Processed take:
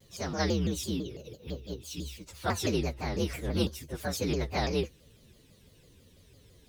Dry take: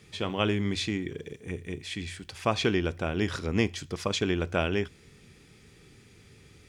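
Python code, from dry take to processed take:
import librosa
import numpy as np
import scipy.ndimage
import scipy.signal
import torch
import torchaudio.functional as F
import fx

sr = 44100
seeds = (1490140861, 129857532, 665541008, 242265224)

y = fx.partial_stretch(x, sr, pct=122)
y = fx.vibrato_shape(y, sr, shape='saw_down', rate_hz=6.0, depth_cents=250.0)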